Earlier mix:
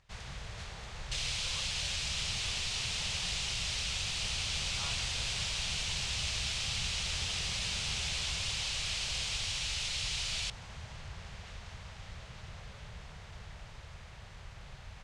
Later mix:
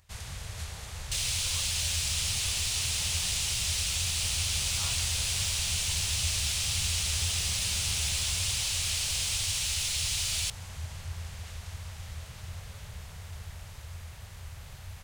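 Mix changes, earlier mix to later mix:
first sound: add bell 84 Hz +12 dB 0.54 oct; master: remove air absorption 110 m

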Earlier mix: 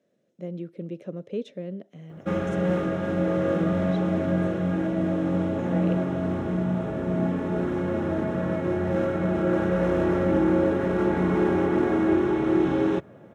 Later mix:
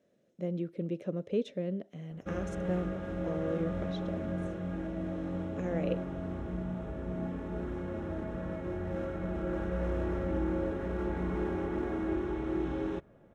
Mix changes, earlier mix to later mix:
background -11.5 dB; master: remove HPF 97 Hz 24 dB/oct

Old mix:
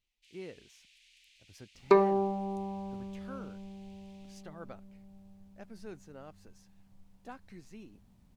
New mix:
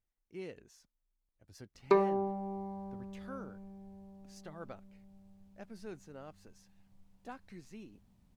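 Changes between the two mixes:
first sound: muted; second sound -4.0 dB

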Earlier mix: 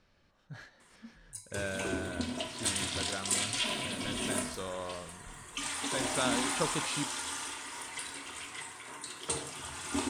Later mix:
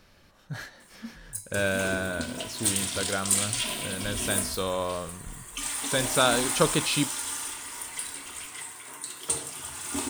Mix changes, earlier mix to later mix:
speech +10.0 dB; master: remove air absorption 64 m

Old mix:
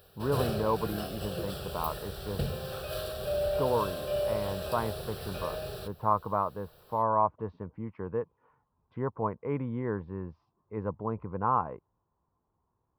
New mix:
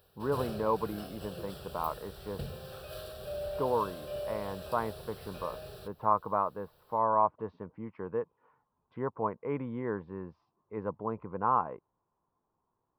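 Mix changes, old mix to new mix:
speech: add bell 61 Hz -11.5 dB 2.3 oct; background -7.5 dB

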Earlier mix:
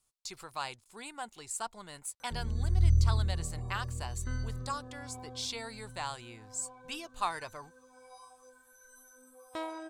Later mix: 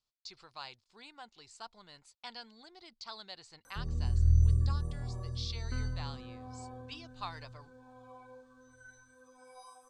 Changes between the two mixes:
speech: add ladder low-pass 5400 Hz, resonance 50%; background: entry +1.45 s

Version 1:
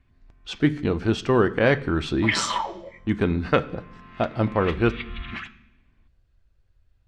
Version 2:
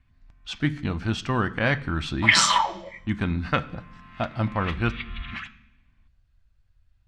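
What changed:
second sound +7.0 dB; master: add bell 420 Hz -13.5 dB 0.9 oct

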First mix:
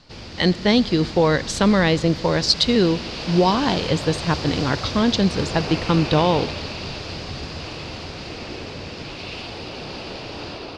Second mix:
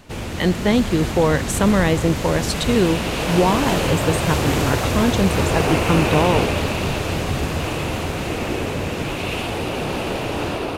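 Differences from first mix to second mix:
background +10.0 dB; master: remove synth low-pass 4800 Hz, resonance Q 5.2

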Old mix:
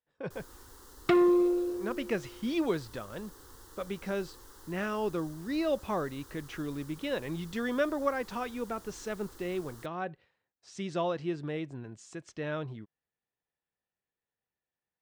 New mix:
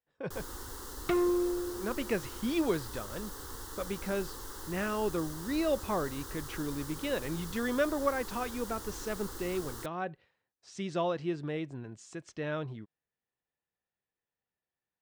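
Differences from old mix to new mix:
first sound +9.5 dB; second sound -5.0 dB

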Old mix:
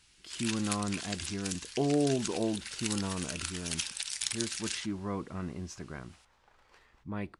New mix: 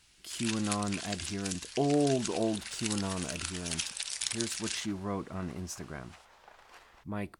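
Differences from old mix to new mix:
speech: remove air absorption 80 m; second sound +9.0 dB; master: add bell 660 Hz +5 dB 0.3 oct

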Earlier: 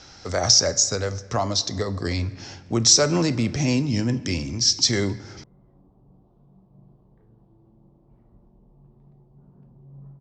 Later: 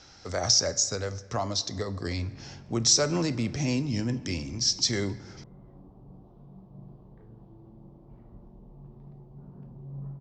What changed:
speech -6.0 dB; background +5.5 dB

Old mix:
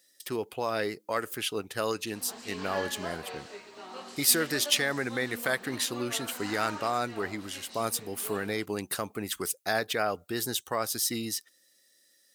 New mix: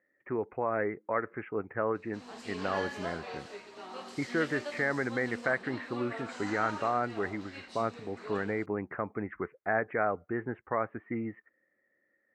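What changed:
speech: add steep low-pass 2200 Hz 72 dB/oct; master: add high shelf 4500 Hz -6 dB

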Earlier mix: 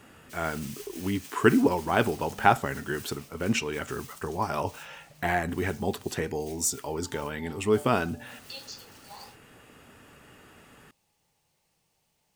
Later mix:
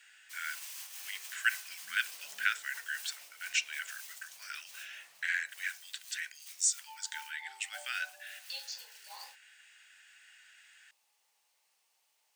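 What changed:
speech: add Chebyshev band-pass 1500–8700 Hz, order 5; master: add HPF 930 Hz 12 dB/oct

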